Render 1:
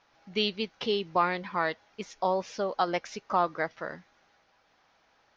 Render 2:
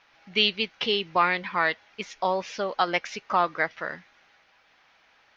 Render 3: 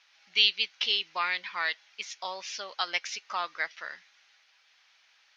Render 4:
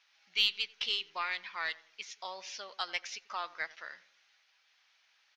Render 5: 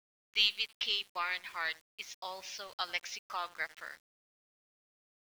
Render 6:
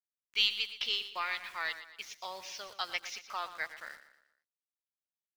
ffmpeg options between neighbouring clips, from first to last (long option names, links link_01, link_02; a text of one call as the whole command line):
ffmpeg -i in.wav -af "equalizer=frequency=2400:width=0.76:gain=10" out.wav
ffmpeg -i in.wav -af "bandpass=frequency=6100:width_type=q:width=0.8:csg=0,volume=4.5dB" out.wav
ffmpeg -i in.wav -filter_complex "[0:a]aeval=exprs='0.376*(cos(1*acos(clip(val(0)/0.376,-1,1)))-cos(1*PI/2))+0.00841*(cos(3*acos(clip(val(0)/0.376,-1,1)))-cos(3*PI/2))+0.0106*(cos(4*acos(clip(val(0)/0.376,-1,1)))-cos(4*PI/2))+0.00531*(cos(5*acos(clip(val(0)/0.376,-1,1)))-cos(5*PI/2))+0.00237*(cos(7*acos(clip(val(0)/0.376,-1,1)))-cos(7*PI/2))':channel_layout=same,asplit=2[link_01][link_02];[link_02]adelay=90,lowpass=frequency=1200:poles=1,volume=-17dB,asplit=2[link_03][link_04];[link_04]adelay=90,lowpass=frequency=1200:poles=1,volume=0.45,asplit=2[link_05][link_06];[link_06]adelay=90,lowpass=frequency=1200:poles=1,volume=0.45,asplit=2[link_07][link_08];[link_08]adelay=90,lowpass=frequency=1200:poles=1,volume=0.45[link_09];[link_01][link_03][link_05][link_07][link_09]amix=inputs=5:normalize=0,volume=-5.5dB" out.wav
ffmpeg -i in.wav -af "aeval=exprs='val(0)*gte(abs(val(0)),0.00266)':channel_layout=same" out.wav
ffmpeg -i in.wav -af "aecho=1:1:118|236|354|472:0.224|0.0985|0.0433|0.0191" out.wav